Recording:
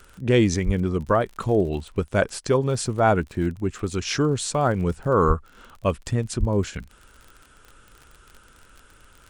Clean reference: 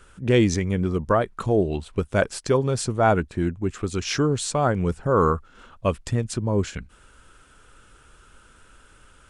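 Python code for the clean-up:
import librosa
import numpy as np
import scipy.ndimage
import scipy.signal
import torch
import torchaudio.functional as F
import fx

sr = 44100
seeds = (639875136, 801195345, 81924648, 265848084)

y = fx.fix_declick_ar(x, sr, threshold=6.5)
y = fx.fix_deplosive(y, sr, at_s=(0.65, 5.27, 6.39))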